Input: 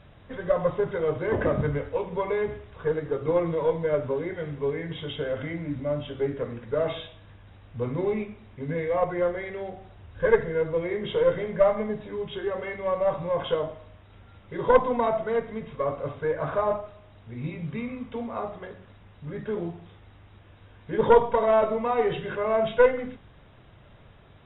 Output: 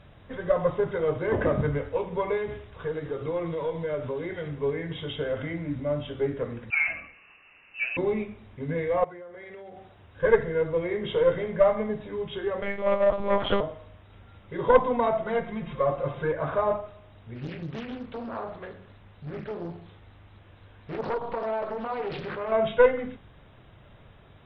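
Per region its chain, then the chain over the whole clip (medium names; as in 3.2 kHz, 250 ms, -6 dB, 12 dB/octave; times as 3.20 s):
2.37–4.48 s: compression 2:1, threshold -30 dBFS + dynamic bell 3.5 kHz, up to +5 dB, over -57 dBFS, Q 0.97
6.70–7.97 s: high-pass 160 Hz + frequency inversion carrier 2.8 kHz
9.04–10.23 s: high-pass 180 Hz 6 dB/octave + compression 16:1, threshold -39 dBFS
12.62–13.61 s: waveshaping leveller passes 1 + monotone LPC vocoder at 8 kHz 200 Hz
15.26–16.32 s: comb 5.7 ms, depth 84% + upward compressor, threshold -31 dBFS
17.35–22.52 s: compression 2.5:1, threshold -30 dBFS + hum notches 60/120/180/240/300/360/420/480 Hz + loudspeaker Doppler distortion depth 0.9 ms
whole clip: none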